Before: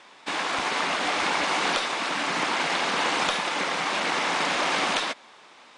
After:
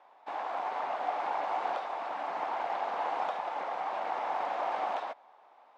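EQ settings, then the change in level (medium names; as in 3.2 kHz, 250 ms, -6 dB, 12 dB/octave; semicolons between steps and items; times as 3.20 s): band-pass filter 750 Hz, Q 3.4; 0.0 dB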